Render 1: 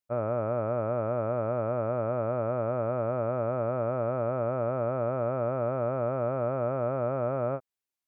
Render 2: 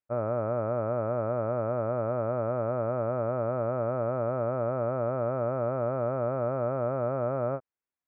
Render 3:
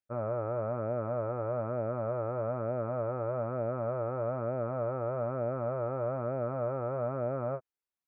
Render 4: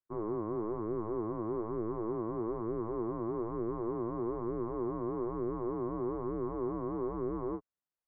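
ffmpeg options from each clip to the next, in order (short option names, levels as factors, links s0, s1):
-af "lowpass=f=2200:w=0.5412,lowpass=f=2200:w=1.3066"
-af "flanger=delay=0.4:depth=2:regen=-50:speed=1.1:shape=sinusoidal"
-af "highpass=f=200:t=q:w=0.5412,highpass=f=200:t=q:w=1.307,lowpass=f=2100:t=q:w=0.5176,lowpass=f=2100:t=q:w=0.7071,lowpass=f=2100:t=q:w=1.932,afreqshift=-220,volume=0.841"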